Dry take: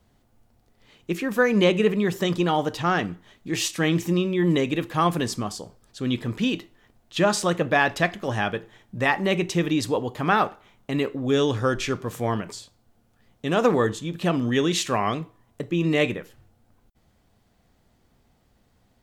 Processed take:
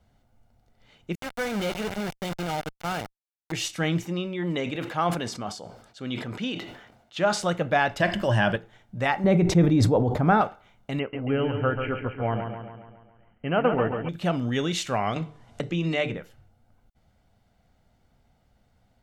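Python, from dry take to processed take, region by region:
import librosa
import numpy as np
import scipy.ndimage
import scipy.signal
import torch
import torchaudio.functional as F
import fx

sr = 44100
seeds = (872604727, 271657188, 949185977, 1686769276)

y = fx.chain(x, sr, fx.sample_gate(floor_db=-22.0),
    fx.tube_stage(drive_db=21.0, bias=0.4), at=(1.15, 3.52))
y = fx.chain(y, sr, fx.highpass(hz=280.0, slope=6),
    fx.high_shelf(hz=7600.0, db=-8.5),
    fx.sustainer(db_per_s=67.0), at=(4.05, 7.41))
y = fx.chain(y, sr, fx.ripple_eq(per_octave=1.3, db=9),
    fx.env_flatten(amount_pct=50), at=(8.0, 8.56))
y = fx.chain(y, sr, fx.tilt_shelf(db=8.0, hz=1100.0),
    fx.notch(hz=2900.0, q=6.9),
    fx.sustainer(db_per_s=51.0), at=(9.24, 10.41))
y = fx.chain(y, sr, fx.brickwall_lowpass(high_hz=3200.0),
    fx.transient(attack_db=1, sustain_db=-7),
    fx.echo_feedback(ms=138, feedback_pct=55, wet_db=-6.5), at=(10.99, 14.09))
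y = fx.chain(y, sr, fx.lowpass(hz=7700.0, slope=12),
    fx.hum_notches(base_hz=50, count=9),
    fx.band_squash(depth_pct=70), at=(15.16, 16.17))
y = fx.high_shelf(y, sr, hz=6100.0, db=-7.0)
y = y + 0.38 * np.pad(y, (int(1.4 * sr / 1000.0), 0))[:len(y)]
y = F.gain(torch.from_numpy(y), -2.5).numpy()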